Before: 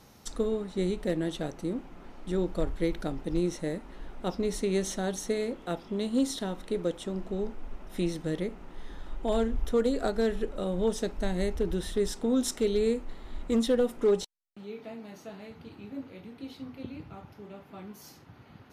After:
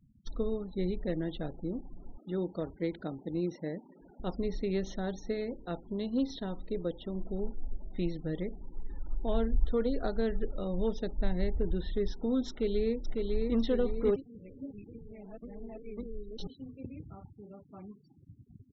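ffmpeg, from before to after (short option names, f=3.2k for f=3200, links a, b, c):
-filter_complex "[0:a]asettb=1/sr,asplit=3[a][b][c];[a]atrim=end=2.174[d];[b]atrim=start=2.17:end=4.2,asetpts=PTS-STARTPTS,afade=t=in:d=0.004:c=qsin,afade=t=out:st=2.026:d=0.004:c=qsin,highpass=140[e];[c]atrim=start=4.196[f];[d][e]acrossfade=d=0.004:c1=hsin:c2=qsin[g];[g][f]acrossfade=d=0.004:c1=qsin:c2=hsin,asplit=2[h][i];[i]afade=t=in:st=12.49:d=0.01,afade=t=out:st=13.55:d=0.01,aecho=0:1:550|1100|1650|2200|2750|3300|3850:0.707946|0.353973|0.176986|0.0884932|0.0442466|0.0221233|0.0110617[j];[h][j]amix=inputs=2:normalize=0,asplit=3[k][l][m];[k]atrim=end=14.162[n];[l]atrim=start=14.158:end=16.472,asetpts=PTS-STARTPTS,areverse[o];[m]atrim=start=16.468[p];[n][o]acrossfade=d=0.004:c1=hsin:c2=hsin[q];[q][p]acrossfade=d=0.004:c1=hsin:c2=hsin,lowpass=f=4.9k:w=0.5412,lowpass=f=4.9k:w=1.3066,afftfilt=real='re*gte(hypot(re,im),0.00794)':imag='im*gte(hypot(re,im),0.00794)':win_size=1024:overlap=0.75,lowshelf=f=120:g=10,volume=-5.5dB"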